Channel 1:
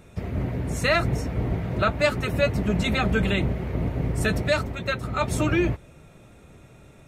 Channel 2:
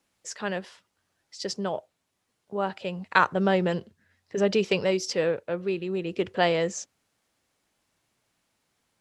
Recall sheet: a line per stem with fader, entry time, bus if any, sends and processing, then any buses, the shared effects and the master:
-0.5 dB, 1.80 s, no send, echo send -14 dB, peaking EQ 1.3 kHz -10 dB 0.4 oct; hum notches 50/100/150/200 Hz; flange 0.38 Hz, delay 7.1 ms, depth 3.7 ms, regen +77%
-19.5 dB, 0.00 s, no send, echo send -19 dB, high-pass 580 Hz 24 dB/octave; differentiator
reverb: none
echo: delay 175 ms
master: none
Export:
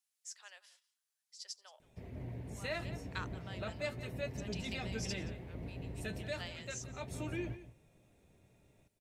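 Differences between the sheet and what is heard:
stem 1 -0.5 dB -> -12.5 dB; stem 2 -19.5 dB -> -8.5 dB

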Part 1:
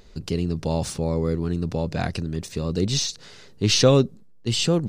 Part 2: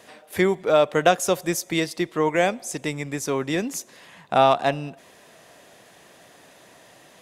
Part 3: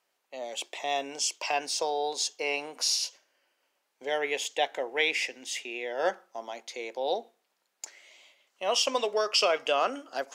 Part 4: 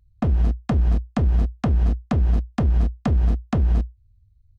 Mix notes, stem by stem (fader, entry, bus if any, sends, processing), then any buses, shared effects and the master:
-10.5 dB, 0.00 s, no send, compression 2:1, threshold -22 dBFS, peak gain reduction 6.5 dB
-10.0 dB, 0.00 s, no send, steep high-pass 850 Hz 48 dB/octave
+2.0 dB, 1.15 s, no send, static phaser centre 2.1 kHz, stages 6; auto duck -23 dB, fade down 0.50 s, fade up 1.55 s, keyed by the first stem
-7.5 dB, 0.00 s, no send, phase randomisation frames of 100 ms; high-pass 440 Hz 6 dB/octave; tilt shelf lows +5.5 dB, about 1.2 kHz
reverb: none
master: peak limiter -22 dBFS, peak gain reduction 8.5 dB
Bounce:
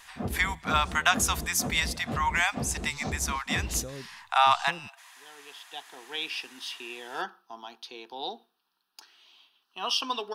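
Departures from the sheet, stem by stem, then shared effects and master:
stem 1 -10.5 dB -> -19.5 dB; stem 2 -10.0 dB -> +1.5 dB; master: missing peak limiter -22 dBFS, peak gain reduction 8.5 dB

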